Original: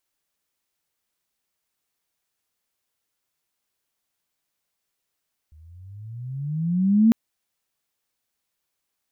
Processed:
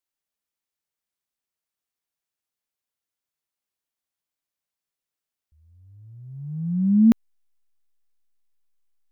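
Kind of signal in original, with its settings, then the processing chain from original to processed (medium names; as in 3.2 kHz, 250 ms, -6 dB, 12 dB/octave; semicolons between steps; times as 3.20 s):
gliding synth tone sine, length 1.60 s, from 74.9 Hz, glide +19.5 st, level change +35.5 dB, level -11 dB
in parallel at -9 dB: hysteresis with a dead band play -39.5 dBFS; on the sum: upward expansion 1.5:1, over -31 dBFS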